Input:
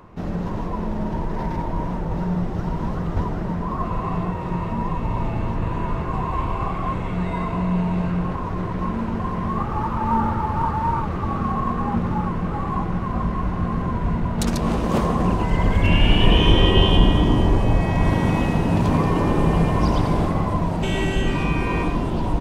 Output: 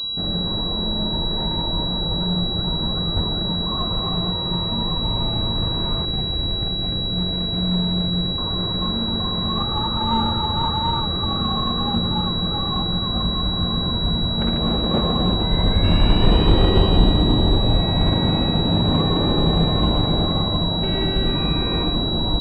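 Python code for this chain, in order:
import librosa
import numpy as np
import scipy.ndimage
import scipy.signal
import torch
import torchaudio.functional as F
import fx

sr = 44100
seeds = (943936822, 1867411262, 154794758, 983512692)

y = fx.median_filter(x, sr, points=41, at=(6.05, 8.38))
y = fx.notch(y, sr, hz=1000.0, q=12.0)
y = fx.pwm(y, sr, carrier_hz=3900.0)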